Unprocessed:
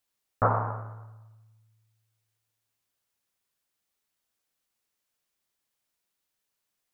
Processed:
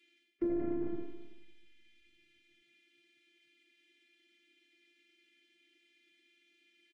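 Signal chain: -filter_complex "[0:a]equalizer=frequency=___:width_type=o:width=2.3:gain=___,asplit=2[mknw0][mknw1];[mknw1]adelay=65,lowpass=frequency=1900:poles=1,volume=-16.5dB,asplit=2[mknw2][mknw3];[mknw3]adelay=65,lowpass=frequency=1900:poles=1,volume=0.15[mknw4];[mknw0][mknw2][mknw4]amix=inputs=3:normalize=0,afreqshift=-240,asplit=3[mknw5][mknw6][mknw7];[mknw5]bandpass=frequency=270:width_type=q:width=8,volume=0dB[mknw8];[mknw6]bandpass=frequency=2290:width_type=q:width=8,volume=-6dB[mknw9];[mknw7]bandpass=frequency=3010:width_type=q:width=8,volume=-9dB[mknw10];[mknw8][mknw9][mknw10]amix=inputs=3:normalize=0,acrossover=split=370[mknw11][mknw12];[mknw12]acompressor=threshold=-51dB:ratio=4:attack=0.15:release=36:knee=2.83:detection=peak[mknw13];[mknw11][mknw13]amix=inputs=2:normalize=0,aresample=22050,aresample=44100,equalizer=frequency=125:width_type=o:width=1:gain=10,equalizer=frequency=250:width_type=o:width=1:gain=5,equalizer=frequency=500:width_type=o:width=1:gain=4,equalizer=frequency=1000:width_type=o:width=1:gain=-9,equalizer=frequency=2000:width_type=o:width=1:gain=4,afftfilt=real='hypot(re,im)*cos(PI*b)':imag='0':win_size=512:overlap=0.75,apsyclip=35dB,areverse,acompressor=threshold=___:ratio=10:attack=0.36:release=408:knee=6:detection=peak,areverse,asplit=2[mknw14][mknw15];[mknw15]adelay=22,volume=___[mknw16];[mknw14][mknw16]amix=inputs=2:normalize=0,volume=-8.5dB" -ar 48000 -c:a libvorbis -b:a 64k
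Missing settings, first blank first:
2000, 8, -18dB, -8dB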